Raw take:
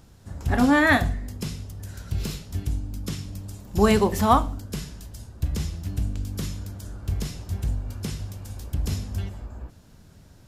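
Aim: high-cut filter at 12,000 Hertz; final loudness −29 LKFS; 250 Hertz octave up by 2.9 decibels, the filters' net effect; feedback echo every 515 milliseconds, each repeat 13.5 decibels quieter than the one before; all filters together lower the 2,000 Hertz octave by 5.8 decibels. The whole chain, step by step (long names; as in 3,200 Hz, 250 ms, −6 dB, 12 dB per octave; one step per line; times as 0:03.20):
low-pass filter 12,000 Hz
parametric band 250 Hz +3.5 dB
parametric band 2,000 Hz −7 dB
repeating echo 515 ms, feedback 21%, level −13.5 dB
level −3.5 dB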